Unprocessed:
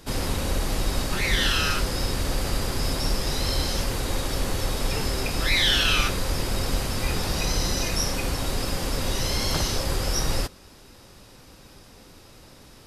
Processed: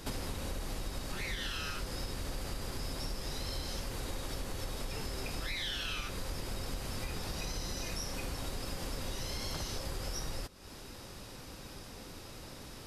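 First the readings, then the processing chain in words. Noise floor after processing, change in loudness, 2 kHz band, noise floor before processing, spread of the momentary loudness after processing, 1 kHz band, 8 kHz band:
−49 dBFS, −14.5 dB, −14.5 dB, −50 dBFS, 11 LU, −13.0 dB, −13.0 dB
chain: downward compressor, threshold −37 dBFS, peak gain reduction 19 dB
level +1 dB

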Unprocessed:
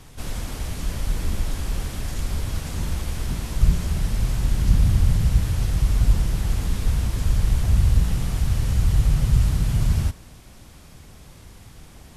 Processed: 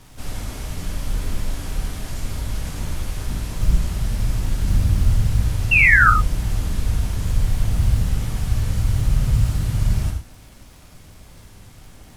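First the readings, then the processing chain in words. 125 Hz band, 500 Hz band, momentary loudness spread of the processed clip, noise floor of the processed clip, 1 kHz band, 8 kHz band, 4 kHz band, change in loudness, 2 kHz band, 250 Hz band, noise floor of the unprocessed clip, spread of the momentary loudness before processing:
+0.5 dB, 0.0 dB, 15 LU, −45 dBFS, +13.0 dB, +0.5 dB, +0.5 dB, +2.5 dB, +19.5 dB, −0.5 dB, −46 dBFS, 10 LU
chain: surface crackle 150 per second −39 dBFS
log-companded quantiser 8 bits
sound drawn into the spectrogram fall, 0:05.71–0:06.10, 1,200–2,800 Hz −13 dBFS
reverb whose tail is shaped and stops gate 130 ms flat, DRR 1.5 dB
level −2 dB

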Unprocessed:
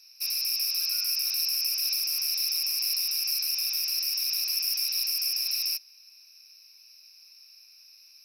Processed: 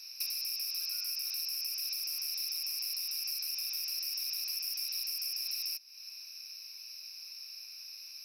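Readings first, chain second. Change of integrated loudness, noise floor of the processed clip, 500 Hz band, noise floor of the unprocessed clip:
−9.5 dB, −49 dBFS, can't be measured, −55 dBFS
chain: downward compressor 5 to 1, threshold −42 dBFS, peak gain reduction 16 dB
level +6.5 dB

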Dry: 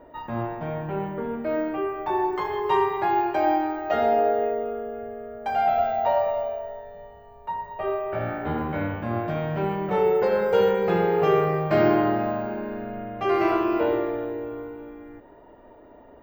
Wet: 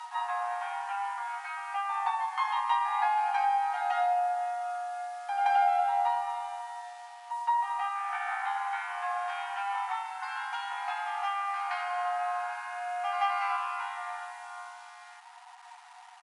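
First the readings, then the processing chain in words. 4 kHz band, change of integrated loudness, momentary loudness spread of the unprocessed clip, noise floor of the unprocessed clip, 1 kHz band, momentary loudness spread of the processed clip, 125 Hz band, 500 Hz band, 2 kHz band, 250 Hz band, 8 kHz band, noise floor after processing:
−1.5 dB, −6.5 dB, 13 LU, −49 dBFS, −1.5 dB, 16 LU, below −40 dB, below −15 dB, −1.5 dB, below −40 dB, can't be measured, −51 dBFS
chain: on a send: backwards echo 173 ms −10.5 dB
on the sum: downward compressor 8 to 1, threshold −27 dBFS, peak gain reduction 12 dB
in parallel at −5 dB: bit reduction 8 bits
on the sum: frequency shifter +16 Hz
brick-wall band-pass 710–11,000 Hz
double-tracking delay 15 ms −10.5 dB

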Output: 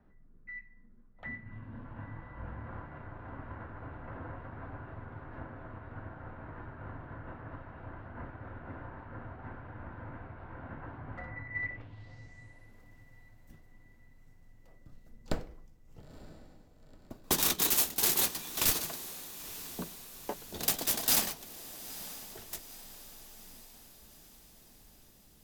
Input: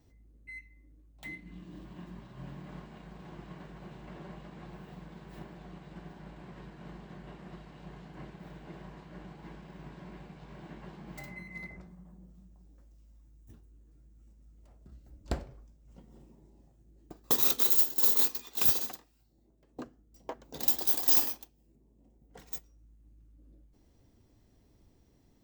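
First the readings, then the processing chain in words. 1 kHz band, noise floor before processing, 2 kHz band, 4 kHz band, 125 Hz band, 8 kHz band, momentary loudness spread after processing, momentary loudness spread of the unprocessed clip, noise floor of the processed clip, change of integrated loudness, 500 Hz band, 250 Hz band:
+4.0 dB, −66 dBFS, +6.0 dB, +4.0 dB, +3.0 dB, +5.5 dB, 22 LU, 23 LU, −58 dBFS, −9.0 dB, +2.0 dB, +1.0 dB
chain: running median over 3 samples
feedback delay with all-pass diffusion 932 ms, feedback 54%, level −14.5 dB
low-pass filter sweep 1,500 Hz → 15,000 Hz, 0:11.43–0:12.79
frequency shifter −73 Hz
level +2 dB

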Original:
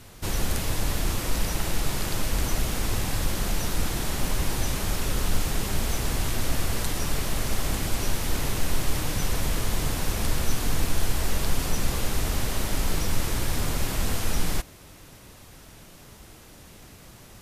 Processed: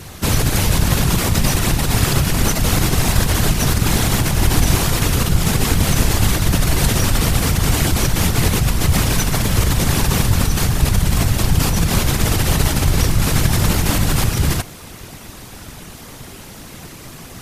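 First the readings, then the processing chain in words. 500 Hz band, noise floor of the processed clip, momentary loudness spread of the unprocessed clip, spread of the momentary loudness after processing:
+10.0 dB, −37 dBFS, 19 LU, 19 LU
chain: parametric band 550 Hz −4 dB 0.26 octaves
in parallel at +1.5 dB: compressor whose output falls as the input rises −25 dBFS, ratio −0.5
on the sum: random phases in short frames
level +4 dB

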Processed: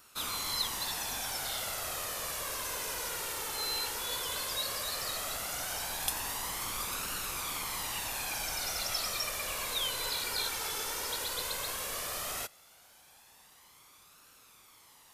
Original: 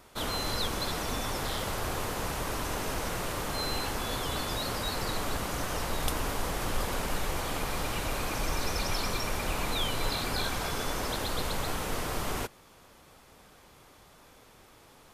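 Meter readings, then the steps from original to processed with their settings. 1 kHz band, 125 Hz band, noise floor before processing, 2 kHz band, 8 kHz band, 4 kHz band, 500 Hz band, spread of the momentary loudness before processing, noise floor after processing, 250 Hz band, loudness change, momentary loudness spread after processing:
−5.5 dB, −15.0 dB, −57 dBFS, −3.0 dB, +3.0 dB, 0.0 dB, −8.5 dB, 3 LU, −59 dBFS, −14.5 dB, −1.0 dB, 3 LU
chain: spectral tilt +3 dB per octave
flanger 0.14 Hz, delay 0.7 ms, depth 1.6 ms, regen +33%
level −2 dB

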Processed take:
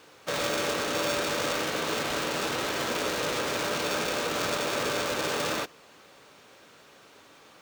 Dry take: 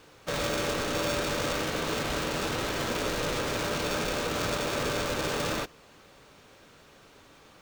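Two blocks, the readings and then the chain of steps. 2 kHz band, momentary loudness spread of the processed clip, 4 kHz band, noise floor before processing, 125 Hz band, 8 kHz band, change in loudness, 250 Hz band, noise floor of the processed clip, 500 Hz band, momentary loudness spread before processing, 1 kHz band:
+2.0 dB, 1 LU, +2.0 dB, −56 dBFS, −5.5 dB, +2.0 dB, +1.0 dB, −1.0 dB, −55 dBFS, +1.0 dB, 1 LU, +1.5 dB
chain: high-pass filter 280 Hz 6 dB per octave
level +2 dB

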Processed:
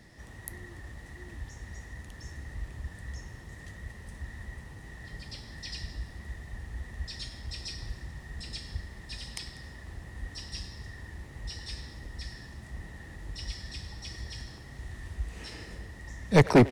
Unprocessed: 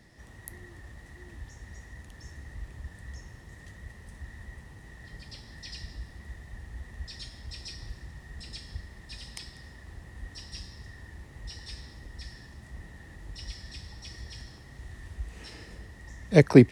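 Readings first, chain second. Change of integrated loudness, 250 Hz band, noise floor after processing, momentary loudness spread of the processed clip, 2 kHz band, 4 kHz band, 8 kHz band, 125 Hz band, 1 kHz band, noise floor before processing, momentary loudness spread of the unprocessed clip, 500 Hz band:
−4.5 dB, −3.5 dB, −48 dBFS, 6 LU, +1.5 dB, +2.5 dB, +2.5 dB, −1.5 dB, +7.5 dB, −50 dBFS, 6 LU, −2.5 dB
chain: hard clipping −15 dBFS, distortion −6 dB
far-end echo of a speakerphone 100 ms, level −14 dB
level +2.5 dB

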